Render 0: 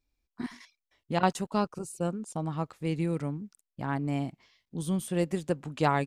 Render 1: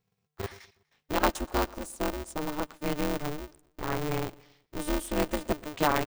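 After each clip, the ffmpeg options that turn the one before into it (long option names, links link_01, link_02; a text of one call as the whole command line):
ffmpeg -i in.wav -af "aecho=1:1:122|244|366:0.0708|0.0326|0.015,aeval=exprs='val(0)*sgn(sin(2*PI*150*n/s))':channel_layout=same" out.wav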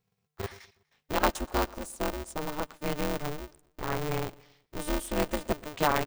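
ffmpeg -i in.wav -af "equalizer=frequency=310:width=7.4:gain=-5.5" out.wav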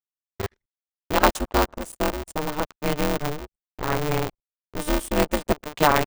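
ffmpeg -i in.wav -af "aeval=exprs='sgn(val(0))*max(abs(val(0))-0.00501,0)':channel_layout=same,anlmdn=0.00251,volume=8dB" out.wav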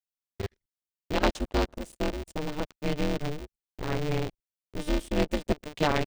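ffmpeg -i in.wav -filter_complex "[0:a]acrossover=split=5700[link_01][link_02];[link_02]acompressor=threshold=-48dB:ratio=4:attack=1:release=60[link_03];[link_01][link_03]amix=inputs=2:normalize=0,equalizer=frequency=1100:width=0.85:gain=-9,volume=-2.5dB" out.wav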